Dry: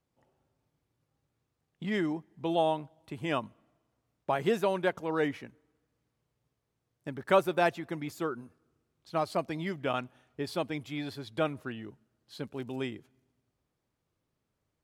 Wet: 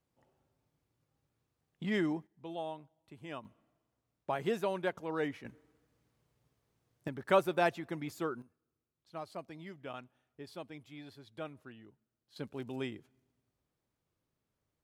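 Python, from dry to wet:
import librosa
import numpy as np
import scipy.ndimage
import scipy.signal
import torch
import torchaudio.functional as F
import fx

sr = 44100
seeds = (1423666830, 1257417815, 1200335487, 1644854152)

y = fx.gain(x, sr, db=fx.steps((0.0, -1.5), (2.27, -13.0), (3.45, -5.5), (5.45, 3.5), (7.08, -3.0), (8.42, -13.0), (12.36, -3.5)))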